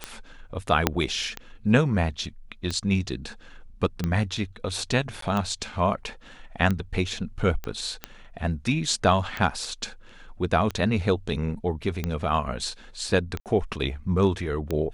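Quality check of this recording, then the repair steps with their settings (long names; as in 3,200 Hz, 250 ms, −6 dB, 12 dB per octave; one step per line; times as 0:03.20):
scratch tick 45 rpm −14 dBFS
0:00.87: click −3 dBFS
0:05.21–0:05.22: drop-out 13 ms
0:07.64: click −19 dBFS
0:13.40–0:13.46: drop-out 58 ms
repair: click removal
repair the gap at 0:05.21, 13 ms
repair the gap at 0:13.40, 58 ms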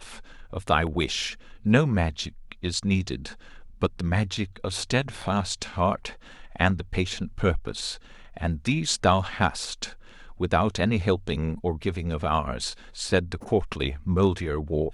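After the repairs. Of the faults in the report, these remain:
0:00.87: click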